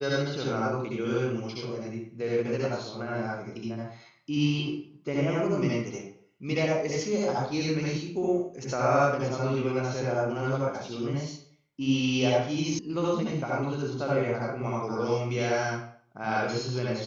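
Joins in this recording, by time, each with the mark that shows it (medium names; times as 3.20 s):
12.79 s: sound stops dead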